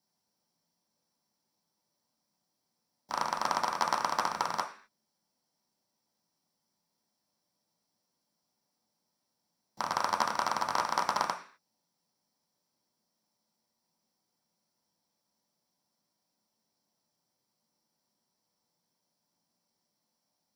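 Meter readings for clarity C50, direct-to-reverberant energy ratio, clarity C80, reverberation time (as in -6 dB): 11.0 dB, 1.5 dB, 15.5 dB, 0.45 s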